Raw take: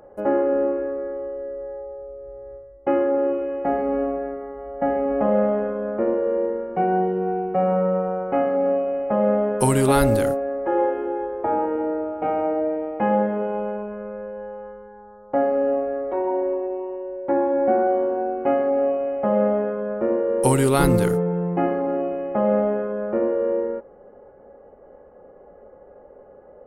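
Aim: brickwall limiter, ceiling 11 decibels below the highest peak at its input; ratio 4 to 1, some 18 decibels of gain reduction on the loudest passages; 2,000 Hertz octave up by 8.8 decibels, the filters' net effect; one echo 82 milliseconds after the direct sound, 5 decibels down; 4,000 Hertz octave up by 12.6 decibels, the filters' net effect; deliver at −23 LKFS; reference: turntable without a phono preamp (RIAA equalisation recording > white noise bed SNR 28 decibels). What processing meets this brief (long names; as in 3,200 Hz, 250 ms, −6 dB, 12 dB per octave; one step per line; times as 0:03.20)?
parametric band 2,000 Hz +8 dB
parametric band 4,000 Hz +5.5 dB
downward compressor 4 to 1, threshold −35 dBFS
brickwall limiter −30.5 dBFS
RIAA equalisation recording
single-tap delay 82 ms −5 dB
white noise bed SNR 28 dB
level +17.5 dB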